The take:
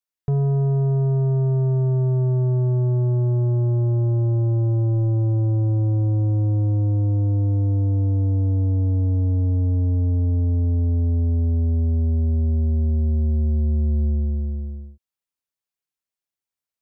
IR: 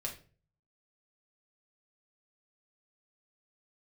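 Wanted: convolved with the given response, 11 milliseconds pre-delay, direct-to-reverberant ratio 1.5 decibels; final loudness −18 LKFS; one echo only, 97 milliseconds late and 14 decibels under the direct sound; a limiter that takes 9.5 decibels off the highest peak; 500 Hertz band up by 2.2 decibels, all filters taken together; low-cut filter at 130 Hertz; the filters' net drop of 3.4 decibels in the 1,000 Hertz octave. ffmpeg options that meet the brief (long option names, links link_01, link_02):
-filter_complex "[0:a]highpass=130,equalizer=frequency=500:width_type=o:gain=5,equalizer=frequency=1000:width_type=o:gain=-8.5,alimiter=level_in=0.5dB:limit=-24dB:level=0:latency=1,volume=-0.5dB,aecho=1:1:97:0.2,asplit=2[link_01][link_02];[1:a]atrim=start_sample=2205,adelay=11[link_03];[link_02][link_03]afir=irnorm=-1:irlink=0,volume=-2dB[link_04];[link_01][link_04]amix=inputs=2:normalize=0,volume=10dB"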